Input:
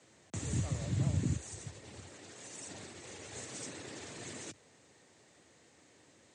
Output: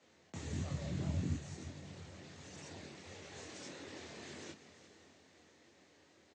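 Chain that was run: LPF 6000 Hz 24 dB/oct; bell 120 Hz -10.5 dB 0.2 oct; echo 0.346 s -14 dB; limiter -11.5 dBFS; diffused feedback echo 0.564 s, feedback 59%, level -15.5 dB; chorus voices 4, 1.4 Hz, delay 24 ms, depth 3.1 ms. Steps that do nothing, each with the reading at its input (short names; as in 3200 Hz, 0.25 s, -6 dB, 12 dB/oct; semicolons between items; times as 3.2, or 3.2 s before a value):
limiter -11.5 dBFS: input peak -22.5 dBFS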